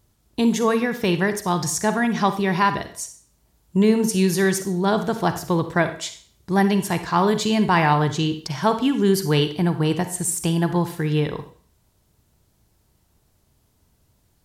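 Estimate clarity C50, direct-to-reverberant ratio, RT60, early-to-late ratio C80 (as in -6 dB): 10.5 dB, 9.0 dB, 0.45 s, 15.0 dB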